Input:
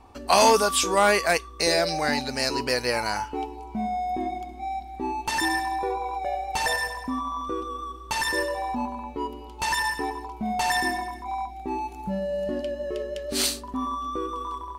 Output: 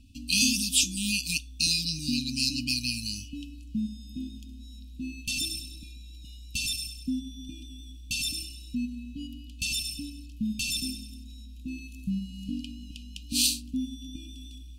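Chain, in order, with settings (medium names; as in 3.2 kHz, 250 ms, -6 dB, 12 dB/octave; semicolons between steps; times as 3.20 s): brick-wall FIR band-stop 300–2400 Hz; trim +1 dB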